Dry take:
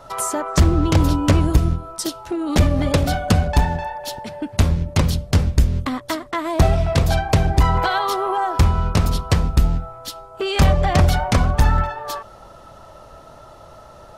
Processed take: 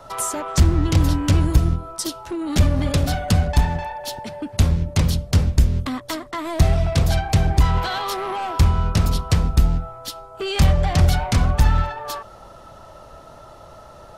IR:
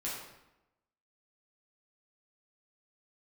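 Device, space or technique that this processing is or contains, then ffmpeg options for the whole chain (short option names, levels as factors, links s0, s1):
one-band saturation: -filter_complex "[0:a]acrossover=split=200|2700[s0][s1][s2];[s1]asoftclip=type=tanh:threshold=0.0668[s3];[s0][s3][s2]amix=inputs=3:normalize=0"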